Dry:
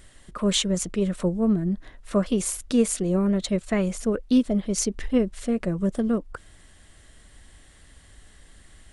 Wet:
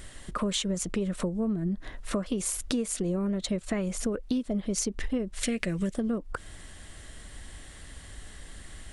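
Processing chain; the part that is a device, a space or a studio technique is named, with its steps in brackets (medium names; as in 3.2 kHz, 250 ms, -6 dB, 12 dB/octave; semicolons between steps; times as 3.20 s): 5.43–5.94 s: resonant high shelf 1.5 kHz +10.5 dB, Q 1.5; serial compression, peaks first (compression 5:1, threshold -29 dBFS, peak gain reduction 13 dB; compression 1.5:1, threshold -38 dBFS, peak gain reduction 4.5 dB); trim +6 dB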